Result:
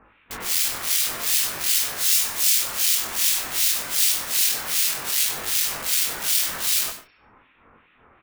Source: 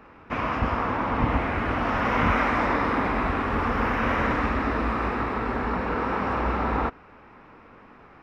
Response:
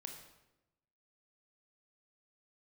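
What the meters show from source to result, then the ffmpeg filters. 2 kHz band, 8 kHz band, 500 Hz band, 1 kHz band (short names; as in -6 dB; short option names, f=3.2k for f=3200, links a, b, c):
-3.0 dB, n/a, -13.5 dB, -13.0 dB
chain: -filter_complex "[0:a]aresample=8000,aresample=44100,lowshelf=f=130:g=5.5,aeval=exprs='(mod(15*val(0)+1,2)-1)/15':c=same,bandreject=f=202.8:t=h:w=4,bandreject=f=405.6:t=h:w=4,bandreject=f=608.4:t=h:w=4,bandreject=f=811.2:t=h:w=4,bandreject=f=1.014k:t=h:w=4,bandreject=f=1.2168k:t=h:w=4,bandreject=f=1.4196k:t=h:w=4,bandreject=f=1.6224k:t=h:w=4,bandreject=f=1.8252k:t=h:w=4,bandreject=f=2.028k:t=h:w=4,bandreject=f=2.2308k:t=h:w=4,bandreject=f=2.4336k:t=h:w=4,bandreject=f=2.6364k:t=h:w=4,bandreject=f=2.8392k:t=h:w=4,bandreject=f=3.042k:t=h:w=4,bandreject=f=3.2448k:t=h:w=4,bandreject=f=3.4476k:t=h:w=4,bandreject=f=3.6504k:t=h:w=4,bandreject=f=3.8532k:t=h:w=4,bandreject=f=4.056k:t=h:w=4,bandreject=f=4.2588k:t=h:w=4,bandreject=f=4.4616k:t=h:w=4,bandreject=f=4.6644k:t=h:w=4,bandreject=f=4.8672k:t=h:w=4,bandreject=f=5.07k:t=h:w=4,bandreject=f=5.2728k:t=h:w=4,bandreject=f=5.4756k:t=h:w=4,acrossover=split=1800[a][b];[a]aeval=exprs='val(0)*(1-1/2+1/2*cos(2*PI*2.6*n/s))':c=same[c];[b]aeval=exprs='val(0)*(1-1/2-1/2*cos(2*PI*2.6*n/s))':c=same[d];[c][d]amix=inputs=2:normalize=0,flanger=delay=19:depth=5.8:speed=0.55,asplit=2[e][f];[1:a]atrim=start_sample=2205,atrim=end_sample=3087,adelay=96[g];[f][g]afir=irnorm=-1:irlink=0,volume=-5.5dB[h];[e][h]amix=inputs=2:normalize=0,crystalizer=i=9:c=0,volume=-3.5dB"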